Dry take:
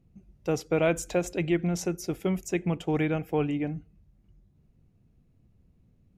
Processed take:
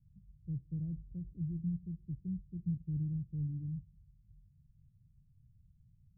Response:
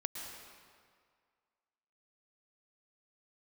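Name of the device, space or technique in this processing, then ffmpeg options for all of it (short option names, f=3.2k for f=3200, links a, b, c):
the neighbour's flat through the wall: -af "lowpass=f=150:w=0.5412,lowpass=f=150:w=1.3066,equalizer=f=130:t=o:w=0.77:g=4,volume=-2.5dB"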